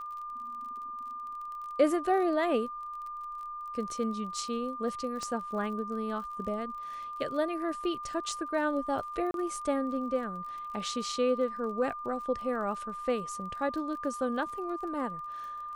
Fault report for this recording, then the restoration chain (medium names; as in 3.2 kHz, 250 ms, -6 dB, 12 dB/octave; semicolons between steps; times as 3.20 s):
crackle 32 per s -41 dBFS
whine 1.2 kHz -37 dBFS
5.23 s: pop -25 dBFS
9.31–9.34 s: dropout 32 ms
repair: de-click; band-stop 1.2 kHz, Q 30; interpolate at 9.31 s, 32 ms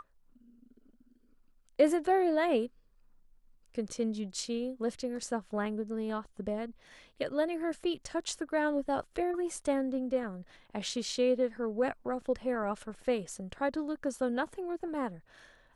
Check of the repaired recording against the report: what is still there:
5.23 s: pop